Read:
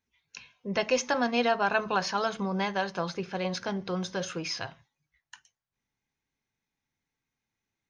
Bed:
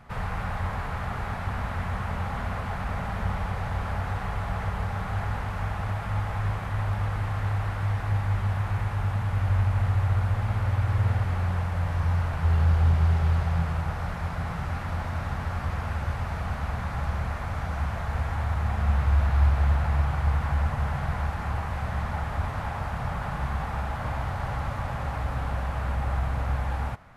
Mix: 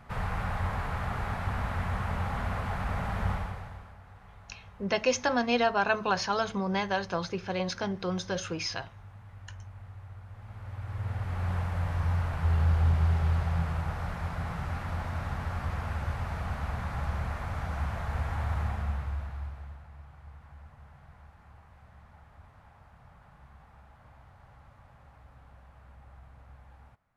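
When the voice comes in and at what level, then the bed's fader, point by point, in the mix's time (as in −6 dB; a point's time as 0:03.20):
4.15 s, 0.0 dB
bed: 0:03.32 −1.5 dB
0:03.97 −22 dB
0:10.26 −22 dB
0:11.52 −3.5 dB
0:18.61 −3.5 dB
0:19.87 −25 dB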